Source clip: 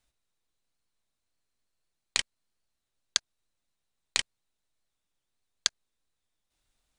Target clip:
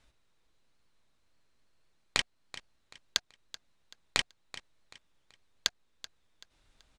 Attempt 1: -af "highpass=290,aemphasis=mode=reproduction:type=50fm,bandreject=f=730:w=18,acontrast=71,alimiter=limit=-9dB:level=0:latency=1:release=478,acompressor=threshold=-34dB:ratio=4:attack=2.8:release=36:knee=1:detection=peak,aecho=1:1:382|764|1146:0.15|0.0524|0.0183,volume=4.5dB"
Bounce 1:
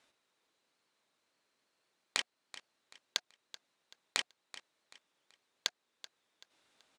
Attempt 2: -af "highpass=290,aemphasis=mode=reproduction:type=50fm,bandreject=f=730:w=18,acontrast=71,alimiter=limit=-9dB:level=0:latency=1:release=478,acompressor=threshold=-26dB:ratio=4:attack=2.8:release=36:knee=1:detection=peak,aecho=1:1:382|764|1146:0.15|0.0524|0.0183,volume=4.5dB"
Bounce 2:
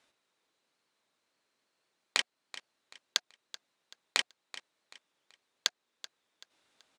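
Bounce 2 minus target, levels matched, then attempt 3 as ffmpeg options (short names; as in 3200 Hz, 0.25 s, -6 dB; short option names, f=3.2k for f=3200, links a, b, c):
250 Hz band -6.5 dB
-af "aemphasis=mode=reproduction:type=50fm,bandreject=f=730:w=18,acontrast=71,alimiter=limit=-9dB:level=0:latency=1:release=478,acompressor=threshold=-26dB:ratio=4:attack=2.8:release=36:knee=1:detection=peak,aecho=1:1:382|764|1146:0.15|0.0524|0.0183,volume=4.5dB"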